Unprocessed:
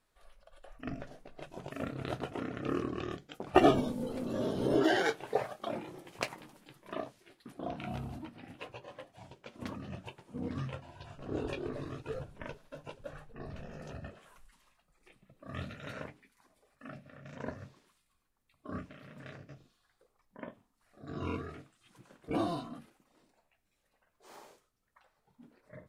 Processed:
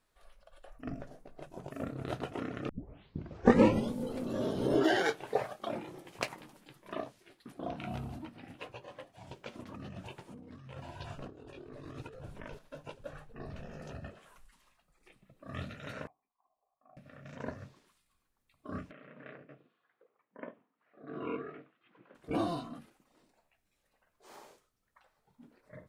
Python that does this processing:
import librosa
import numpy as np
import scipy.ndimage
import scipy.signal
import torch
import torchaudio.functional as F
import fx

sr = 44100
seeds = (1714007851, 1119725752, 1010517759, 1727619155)

y = fx.peak_eq(x, sr, hz=3000.0, db=-7.5, octaves=2.0, at=(0.7, 2.09))
y = fx.over_compress(y, sr, threshold_db=-47.0, ratio=-1.0, at=(9.27, 12.59))
y = fx.formant_cascade(y, sr, vowel='a', at=(16.07, 16.97))
y = fx.cabinet(y, sr, low_hz=170.0, low_slope=24, high_hz=2700.0, hz=(200.0, 470.0, 840.0), db=(-5, 4, -3), at=(18.91, 22.15))
y = fx.edit(y, sr, fx.tape_start(start_s=2.69, length_s=1.25), tone=tone)